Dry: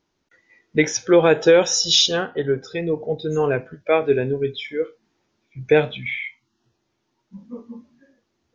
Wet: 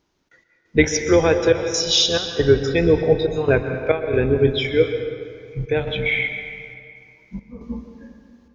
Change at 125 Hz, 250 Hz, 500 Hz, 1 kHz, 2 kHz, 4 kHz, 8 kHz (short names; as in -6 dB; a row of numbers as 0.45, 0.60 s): +5.5 dB, +2.0 dB, +1.0 dB, -2.5 dB, +2.5 dB, -0.5 dB, n/a